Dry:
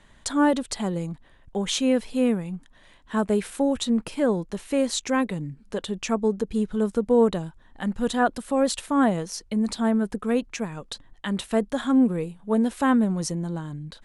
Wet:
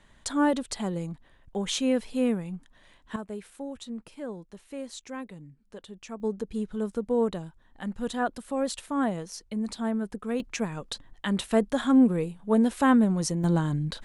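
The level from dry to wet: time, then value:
−3.5 dB
from 0:03.16 −14.5 dB
from 0:06.20 −6.5 dB
from 0:10.40 0 dB
from 0:13.44 +7 dB

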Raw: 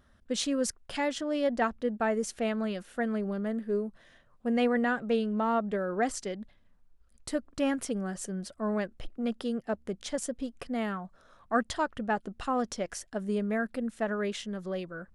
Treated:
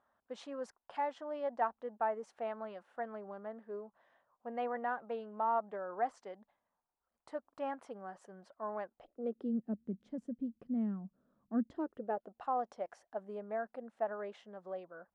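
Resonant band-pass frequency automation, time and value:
resonant band-pass, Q 2.7
0:08.94 870 Hz
0:09.61 220 Hz
0:11.56 220 Hz
0:12.35 770 Hz

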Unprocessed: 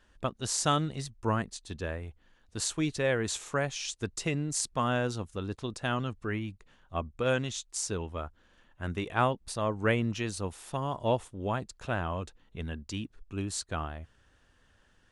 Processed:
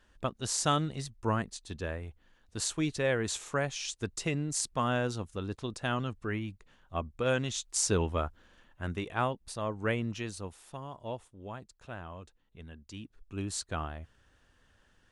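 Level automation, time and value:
0:07.34 −1 dB
0:08.02 +7 dB
0:09.22 −4 dB
0:10.22 −4 dB
0:10.97 −11 dB
0:12.77 −11 dB
0:13.47 −1 dB

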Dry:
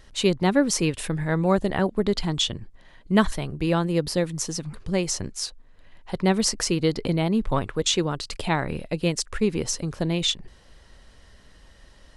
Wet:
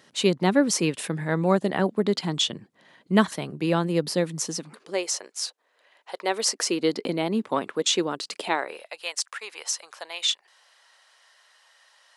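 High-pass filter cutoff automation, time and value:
high-pass filter 24 dB per octave
0:04.47 160 Hz
0:05.13 470 Hz
0:06.18 470 Hz
0:06.89 220 Hz
0:08.36 220 Hz
0:08.94 750 Hz

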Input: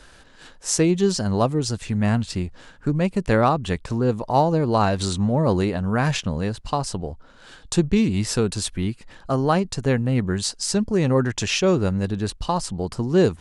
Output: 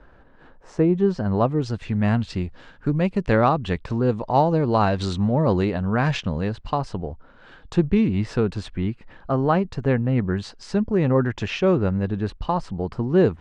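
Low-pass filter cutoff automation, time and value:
0:00.90 1,200 Hz
0:01.45 2,300 Hz
0:02.10 3,800 Hz
0:06.36 3,800 Hz
0:07.05 2,300 Hz

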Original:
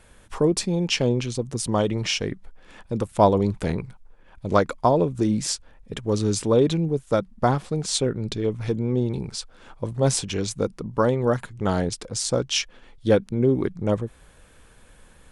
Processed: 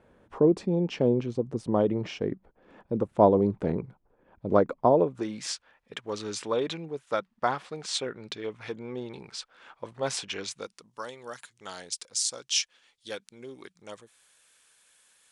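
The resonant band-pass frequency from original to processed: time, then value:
resonant band-pass, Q 0.68
0:04.85 370 Hz
0:05.33 1,900 Hz
0:10.43 1,900 Hz
0:10.83 6,800 Hz

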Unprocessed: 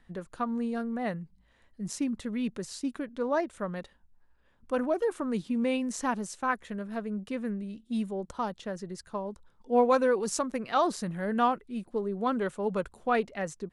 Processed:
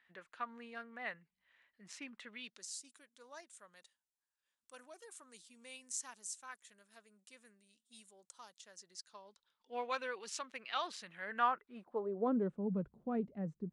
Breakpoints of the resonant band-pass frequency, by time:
resonant band-pass, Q 1.6
0:02.27 2,200 Hz
0:02.74 7,900 Hz
0:08.56 7,900 Hz
0:09.75 2,900 Hz
0:11.07 2,900 Hz
0:12.03 740 Hz
0:12.58 170 Hz

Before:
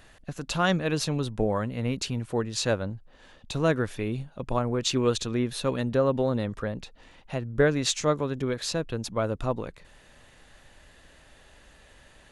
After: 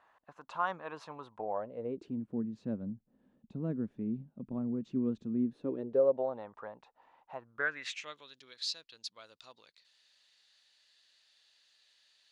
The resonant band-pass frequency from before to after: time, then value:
resonant band-pass, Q 3.7
0:01.35 1,000 Hz
0:02.29 220 Hz
0:05.41 220 Hz
0:06.46 900 Hz
0:07.35 900 Hz
0:08.34 4,400 Hz

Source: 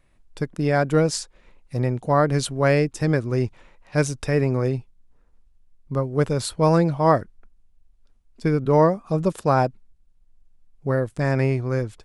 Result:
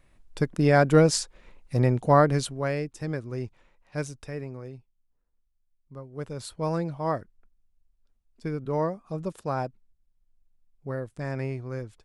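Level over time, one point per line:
0:02.14 +1 dB
0:02.72 −10.5 dB
0:03.99 −10.5 dB
0:04.65 −18 dB
0:06.00 −18 dB
0:06.50 −10.5 dB

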